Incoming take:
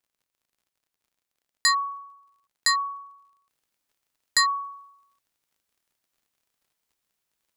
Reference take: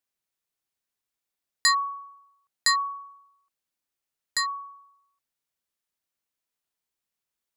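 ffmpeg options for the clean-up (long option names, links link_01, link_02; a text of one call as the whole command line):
ffmpeg -i in.wav -af "adeclick=threshold=4,asetnsamples=nb_out_samples=441:pad=0,asendcmd='3.49 volume volume -6dB',volume=0dB" out.wav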